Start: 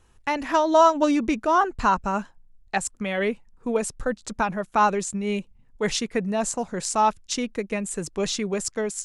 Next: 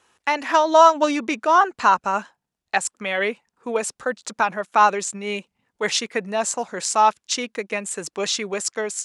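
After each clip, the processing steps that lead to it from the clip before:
meter weighting curve A
level +4.5 dB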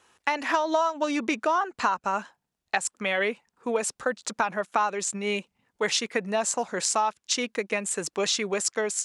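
downward compressor 8 to 1, threshold −21 dBFS, peak gain reduction 13.5 dB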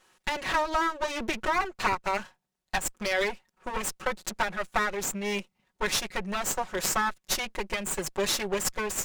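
lower of the sound and its delayed copy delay 5.4 ms

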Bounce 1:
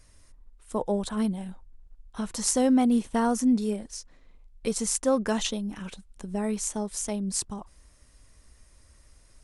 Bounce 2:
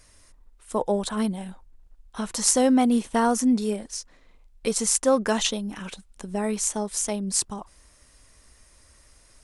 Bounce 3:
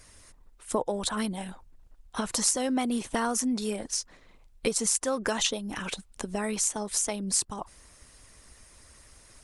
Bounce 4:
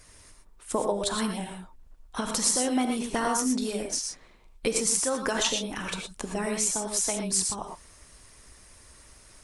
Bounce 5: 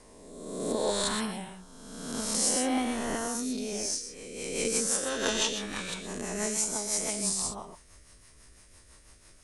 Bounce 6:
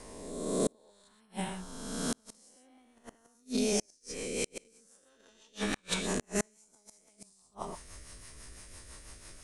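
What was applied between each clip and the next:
low-shelf EQ 270 Hz −7.5 dB; level +5.5 dB
harmonic and percussive parts rebalanced harmonic −9 dB; downward compressor 2.5 to 1, threshold −33 dBFS, peak gain reduction 11 dB; level +6 dB
reverb whose tail is shaped and stops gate 140 ms rising, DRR 3 dB
peak hold with a rise ahead of every peak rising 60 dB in 1.48 s; rotating-speaker cabinet horn 0.65 Hz, later 6 Hz, at 0:03.59; level −4.5 dB
gate with flip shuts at −22 dBFS, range −39 dB; level +5.5 dB

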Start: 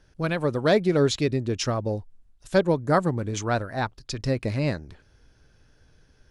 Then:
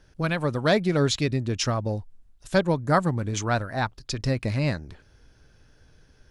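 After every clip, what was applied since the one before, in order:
dynamic equaliser 410 Hz, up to −6 dB, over −35 dBFS, Q 1.2
level +2 dB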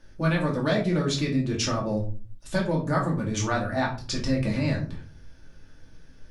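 downward compressor, threshold −24 dBFS, peak gain reduction 9 dB
rectangular room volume 250 cubic metres, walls furnished, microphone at 2.5 metres
level −2 dB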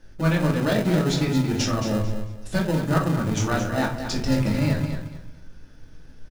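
in parallel at −6 dB: decimation without filtering 39×
on the sum: repeating echo 222 ms, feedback 24%, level −9 dB

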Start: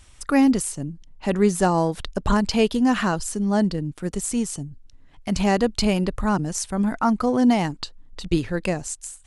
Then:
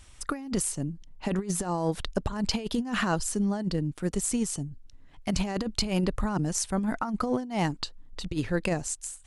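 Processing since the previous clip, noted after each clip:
compressor whose output falls as the input rises −22 dBFS, ratio −0.5
level −4.5 dB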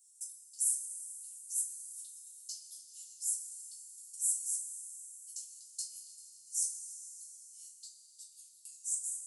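inverse Chebyshev high-pass filter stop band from 1,800 Hz, stop band 70 dB
coupled-rooms reverb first 0.27 s, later 4.2 s, from −18 dB, DRR −6.5 dB
level −5 dB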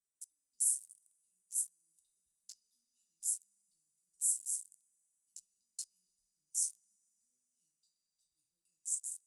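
adaptive Wiener filter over 41 samples

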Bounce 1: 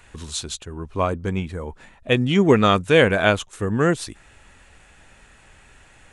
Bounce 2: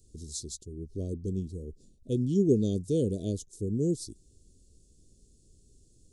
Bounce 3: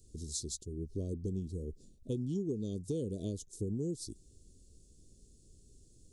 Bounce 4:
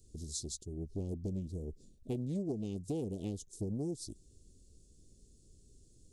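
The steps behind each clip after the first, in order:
elliptic band-stop filter 400–4,900 Hz, stop band 50 dB; level −6.5 dB
downward compressor 12 to 1, threshold −32 dBFS, peak gain reduction 14.5 dB
highs frequency-modulated by the lows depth 0.43 ms; level −1 dB

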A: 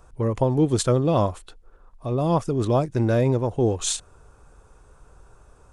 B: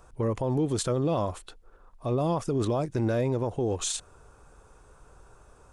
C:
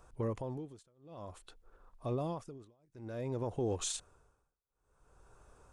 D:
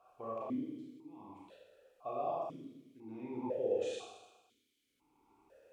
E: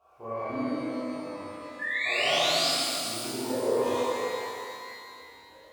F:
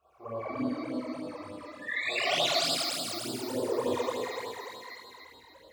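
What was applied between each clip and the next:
low-shelf EQ 160 Hz −4.5 dB; brickwall limiter −19.5 dBFS, peak gain reduction 10 dB
amplitude tremolo 0.54 Hz, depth 99%; level −6 dB
background noise violet −62 dBFS; four-comb reverb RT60 1.1 s, combs from 28 ms, DRR −4.5 dB; formant filter that steps through the vowels 2 Hz; level +5 dB
parametric band 66 Hz +10.5 dB 1 octave; sound drawn into the spectrogram rise, 0:01.79–0:02.69, 1,700–5,300 Hz −37 dBFS; reverb with rising layers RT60 2.6 s, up +12 semitones, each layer −8 dB, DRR −10.5 dB; level −1.5 dB
all-pass phaser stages 12, 3.4 Hz, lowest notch 150–2,200 Hz

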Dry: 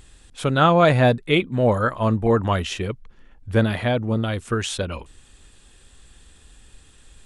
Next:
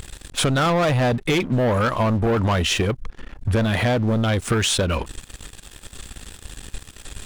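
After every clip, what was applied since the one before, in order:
in parallel at 0 dB: brickwall limiter −16.5 dBFS, peak gain reduction 11 dB
on the sum: leveller curve on the samples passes 3
downward compressor, threshold −17 dBFS, peak gain reduction 10.5 dB
level −1.5 dB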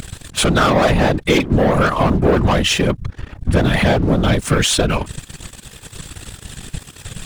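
random phases in short frames
level +5 dB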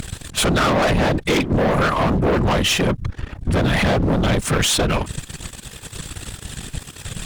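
tube saturation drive 16 dB, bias 0.35
level +2.5 dB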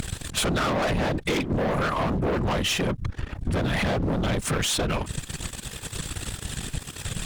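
downward compressor 2.5 to 1, threshold −26 dBFS, peak gain reduction 8 dB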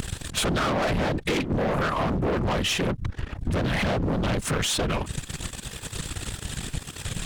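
highs frequency-modulated by the lows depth 0.39 ms

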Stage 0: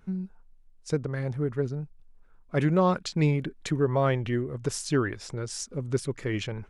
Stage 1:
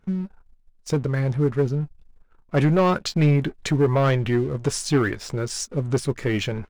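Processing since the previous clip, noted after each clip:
high-shelf EQ 9,700 Hz −6.5 dB
leveller curve on the samples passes 2
double-tracking delay 14 ms −13 dB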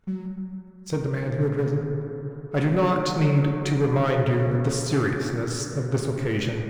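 dense smooth reverb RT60 3.5 s, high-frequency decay 0.25×, DRR 1 dB
level −4 dB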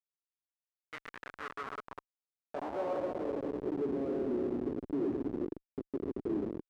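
linear-phase brick-wall band-pass 200–3,100 Hz
comparator with hysteresis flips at −25 dBFS
band-pass filter sweep 1,900 Hz → 330 Hz, 0:00.96–0:04.01

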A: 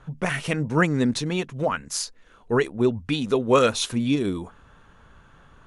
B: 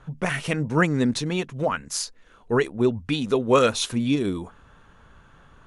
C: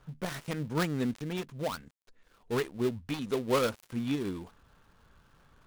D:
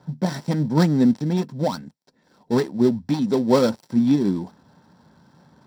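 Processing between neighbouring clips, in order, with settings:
no processing that can be heard
gap after every zero crossing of 0.18 ms; level −9 dB
convolution reverb RT60 0.10 s, pre-delay 3 ms, DRR 10.5 dB

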